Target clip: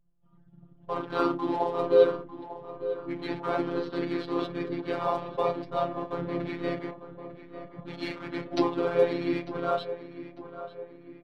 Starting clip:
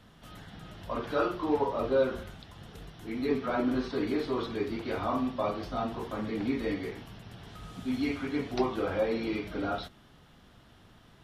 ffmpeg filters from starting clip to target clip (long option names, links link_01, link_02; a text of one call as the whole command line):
ffmpeg -i in.wav -filter_complex "[0:a]anlmdn=1,lowshelf=frequency=160:gain=-8.5,aecho=1:1:5.6:0.44,asplit=2[link_01][link_02];[link_02]aeval=exprs='sgn(val(0))*max(abs(val(0))-0.00473,0)':channel_layout=same,volume=-11dB[link_03];[link_01][link_03]amix=inputs=2:normalize=0,afftfilt=real='hypot(re,im)*cos(PI*b)':imag='0':win_size=1024:overlap=0.75,asplit=2[link_04][link_05];[link_05]asetrate=35002,aresample=44100,atempo=1.25992,volume=-7dB[link_06];[link_04][link_06]amix=inputs=2:normalize=0,asplit=2[link_07][link_08];[link_08]adelay=898,lowpass=frequency=2300:poles=1,volume=-12.5dB,asplit=2[link_09][link_10];[link_10]adelay=898,lowpass=frequency=2300:poles=1,volume=0.51,asplit=2[link_11][link_12];[link_12]adelay=898,lowpass=frequency=2300:poles=1,volume=0.51,asplit=2[link_13][link_14];[link_14]adelay=898,lowpass=frequency=2300:poles=1,volume=0.51,asplit=2[link_15][link_16];[link_16]adelay=898,lowpass=frequency=2300:poles=1,volume=0.51[link_17];[link_09][link_11][link_13][link_15][link_17]amix=inputs=5:normalize=0[link_18];[link_07][link_18]amix=inputs=2:normalize=0,volume=3.5dB" out.wav